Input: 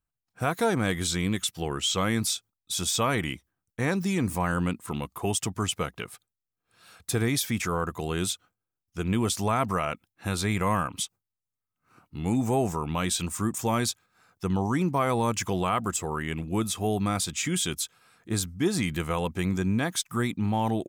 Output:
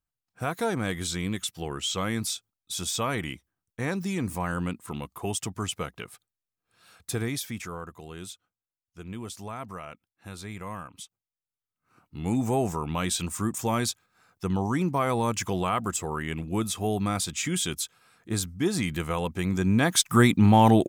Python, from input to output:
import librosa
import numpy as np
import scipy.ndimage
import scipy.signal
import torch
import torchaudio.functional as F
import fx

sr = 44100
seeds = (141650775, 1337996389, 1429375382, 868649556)

y = fx.gain(x, sr, db=fx.line((7.13, -3.0), (8.02, -12.0), (11.04, -12.0), (12.34, -0.5), (19.46, -0.5), (20.12, 9.0)))